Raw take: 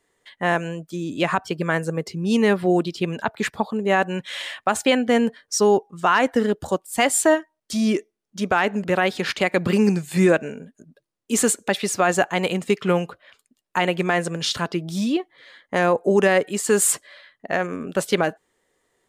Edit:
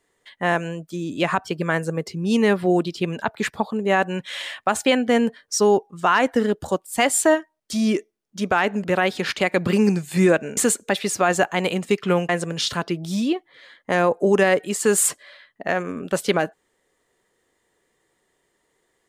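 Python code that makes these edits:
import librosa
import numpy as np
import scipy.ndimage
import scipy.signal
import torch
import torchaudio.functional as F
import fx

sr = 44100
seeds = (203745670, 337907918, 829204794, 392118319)

y = fx.edit(x, sr, fx.cut(start_s=10.57, length_s=0.79),
    fx.cut(start_s=13.08, length_s=1.05), tone=tone)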